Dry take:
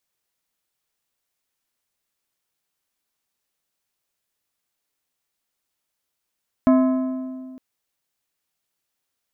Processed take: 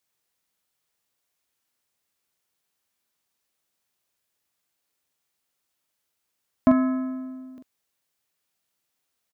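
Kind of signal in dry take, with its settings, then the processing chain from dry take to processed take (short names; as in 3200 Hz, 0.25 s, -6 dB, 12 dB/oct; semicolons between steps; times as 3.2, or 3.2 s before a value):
metal hit plate, length 0.91 s, lowest mode 259 Hz, modes 6, decay 2.06 s, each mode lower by 7 dB, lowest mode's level -11 dB
HPF 46 Hz; doubler 44 ms -5.5 dB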